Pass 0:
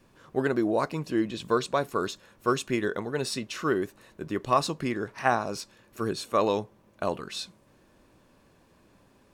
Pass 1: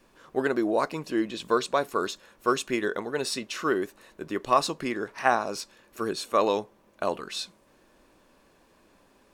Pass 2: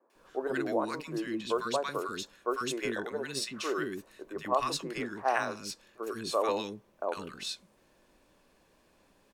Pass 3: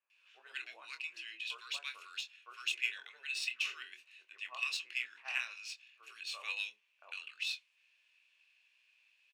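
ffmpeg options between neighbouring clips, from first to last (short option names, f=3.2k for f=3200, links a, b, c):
-af "equalizer=f=110:t=o:w=1.6:g=-11.5,volume=2dB"
-filter_complex "[0:a]acrossover=split=320|1200[a][b][c];[c]adelay=100[d];[a]adelay=150[e];[e][b][d]amix=inputs=3:normalize=0,volume=-3.5dB"
-filter_complex "[0:a]highpass=f=2.6k:t=q:w=6.8,adynamicsmooth=sensitivity=4:basefreq=6.8k,asplit=2[a][b];[b]adelay=24,volume=-8dB[c];[a][c]amix=inputs=2:normalize=0,volume=-6.5dB"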